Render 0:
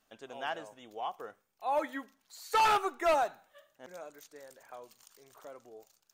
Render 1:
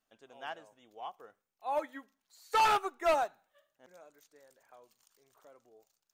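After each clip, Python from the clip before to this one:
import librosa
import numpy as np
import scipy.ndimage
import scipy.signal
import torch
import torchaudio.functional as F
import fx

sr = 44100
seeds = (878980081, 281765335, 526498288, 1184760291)

y = fx.upward_expand(x, sr, threshold_db=-43.0, expansion=1.5)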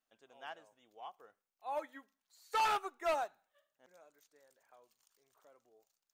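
y = fx.low_shelf(x, sr, hz=370.0, db=-4.5)
y = y * 10.0 ** (-5.0 / 20.0)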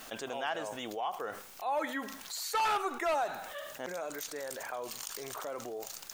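y = fx.env_flatten(x, sr, amount_pct=70)
y = y * 10.0 ** (1.0 / 20.0)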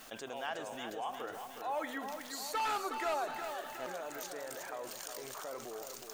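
y = fx.echo_feedback(x, sr, ms=364, feedback_pct=59, wet_db=-7.5)
y = y * 10.0 ** (-4.5 / 20.0)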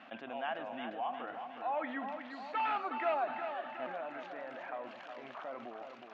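y = fx.cabinet(x, sr, low_hz=170.0, low_slope=12, high_hz=2800.0, hz=(240.0, 430.0, 700.0, 2600.0), db=(7, -10, 5, 3))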